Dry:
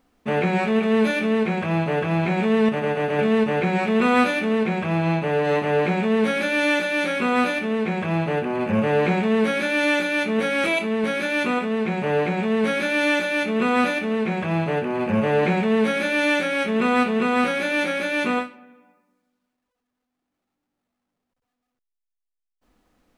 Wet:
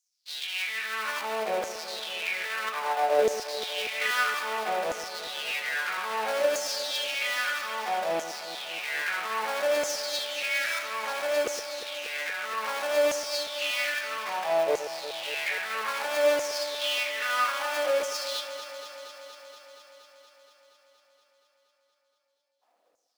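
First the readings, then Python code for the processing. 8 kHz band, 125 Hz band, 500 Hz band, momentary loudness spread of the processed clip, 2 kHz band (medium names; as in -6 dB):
+6.0 dB, under -30 dB, -7.0 dB, 9 LU, -6.0 dB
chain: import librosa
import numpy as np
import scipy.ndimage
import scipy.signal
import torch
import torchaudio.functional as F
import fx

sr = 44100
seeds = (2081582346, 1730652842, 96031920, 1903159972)

y = fx.dead_time(x, sr, dead_ms=0.18)
y = fx.filter_lfo_highpass(y, sr, shape='saw_down', hz=0.61, low_hz=480.0, high_hz=6600.0, q=5.1)
y = fx.echo_alternate(y, sr, ms=118, hz=900.0, feedback_pct=87, wet_db=-10.5)
y = F.gain(torch.from_numpy(y), -7.5).numpy()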